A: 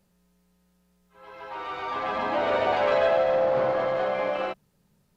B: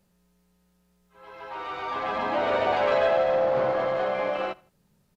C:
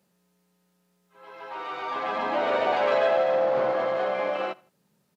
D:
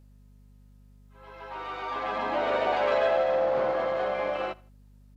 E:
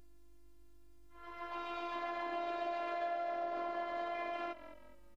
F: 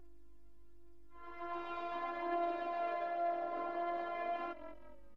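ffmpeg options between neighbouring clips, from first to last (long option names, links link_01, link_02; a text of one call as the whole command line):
ffmpeg -i in.wav -af "aecho=1:1:81|162:0.0631|0.0227" out.wav
ffmpeg -i in.wav -af "highpass=180" out.wav
ffmpeg -i in.wav -af "aeval=exprs='val(0)+0.00282*(sin(2*PI*50*n/s)+sin(2*PI*2*50*n/s)/2+sin(2*PI*3*50*n/s)/3+sin(2*PI*4*50*n/s)/4+sin(2*PI*5*50*n/s)/5)':channel_layout=same,volume=-2dB" out.wav
ffmpeg -i in.wav -filter_complex "[0:a]afftfilt=real='hypot(re,im)*cos(PI*b)':imag='0':win_size=512:overlap=0.75,asplit=4[link_01][link_02][link_03][link_04];[link_02]adelay=209,afreqshift=-43,volume=-19.5dB[link_05];[link_03]adelay=418,afreqshift=-86,volume=-27.7dB[link_06];[link_04]adelay=627,afreqshift=-129,volume=-35.9dB[link_07];[link_01][link_05][link_06][link_07]amix=inputs=4:normalize=0,acompressor=threshold=-36dB:ratio=6,volume=1dB" out.wav
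ffmpeg -i in.wav -af "highshelf=frequency=2500:gain=-10.5,flanger=delay=2.7:depth=4.2:regen=44:speed=0.42:shape=triangular,volume=5.5dB" out.wav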